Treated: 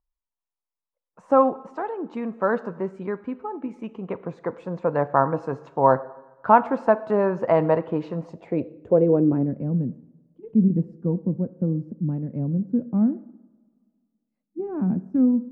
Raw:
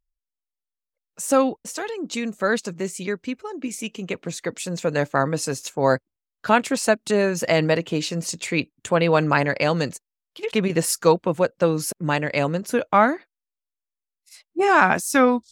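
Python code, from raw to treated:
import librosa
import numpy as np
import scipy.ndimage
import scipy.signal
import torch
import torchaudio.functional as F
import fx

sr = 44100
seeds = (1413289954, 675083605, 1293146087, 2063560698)

y = fx.rev_double_slope(x, sr, seeds[0], early_s=0.84, late_s=2.3, knee_db=-18, drr_db=13.5)
y = fx.filter_sweep_lowpass(y, sr, from_hz=1000.0, to_hz=220.0, start_s=8.14, end_s=9.68, q=2.9)
y = F.gain(torch.from_numpy(y), -2.5).numpy()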